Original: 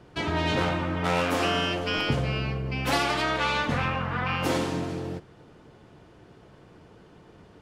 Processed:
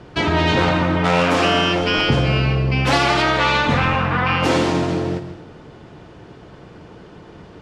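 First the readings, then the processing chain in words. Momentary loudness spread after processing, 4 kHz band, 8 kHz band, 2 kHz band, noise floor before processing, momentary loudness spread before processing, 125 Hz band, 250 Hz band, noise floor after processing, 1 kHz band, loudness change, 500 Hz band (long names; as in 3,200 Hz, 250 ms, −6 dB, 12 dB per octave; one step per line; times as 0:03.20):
5 LU, +9.0 dB, +6.0 dB, +9.0 dB, −53 dBFS, 5 LU, +10.0 dB, +9.5 dB, −42 dBFS, +9.5 dB, +9.5 dB, +9.5 dB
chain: low-pass filter 7,000 Hz 12 dB per octave
dense smooth reverb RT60 0.67 s, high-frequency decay 0.95×, pre-delay 120 ms, DRR 10.5 dB
in parallel at −1 dB: brickwall limiter −21 dBFS, peak gain reduction 9 dB
on the sum: level +5 dB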